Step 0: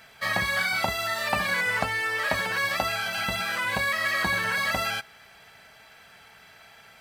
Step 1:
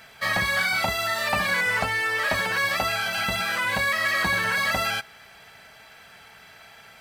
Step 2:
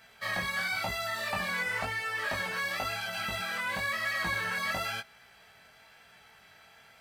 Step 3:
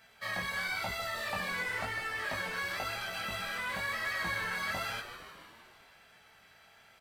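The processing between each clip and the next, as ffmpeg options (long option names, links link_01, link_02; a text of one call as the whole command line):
ffmpeg -i in.wav -af "aeval=exprs='0.398*(cos(1*acos(clip(val(0)/0.398,-1,1)))-cos(1*PI/2))+0.0708*(cos(5*acos(clip(val(0)/0.398,-1,1)))-cos(5*PI/2))':channel_layout=same,volume=-2.5dB" out.wav
ffmpeg -i in.wav -af "flanger=delay=16.5:depth=5.9:speed=0.97,volume=-5.5dB" out.wav
ffmpeg -i in.wav -filter_complex "[0:a]asplit=9[link_01][link_02][link_03][link_04][link_05][link_06][link_07][link_08][link_09];[link_02]adelay=151,afreqshift=-89,volume=-11dB[link_10];[link_03]adelay=302,afreqshift=-178,volume=-14.7dB[link_11];[link_04]adelay=453,afreqshift=-267,volume=-18.5dB[link_12];[link_05]adelay=604,afreqshift=-356,volume=-22.2dB[link_13];[link_06]adelay=755,afreqshift=-445,volume=-26dB[link_14];[link_07]adelay=906,afreqshift=-534,volume=-29.7dB[link_15];[link_08]adelay=1057,afreqshift=-623,volume=-33.5dB[link_16];[link_09]adelay=1208,afreqshift=-712,volume=-37.2dB[link_17];[link_01][link_10][link_11][link_12][link_13][link_14][link_15][link_16][link_17]amix=inputs=9:normalize=0,volume=-3.5dB" out.wav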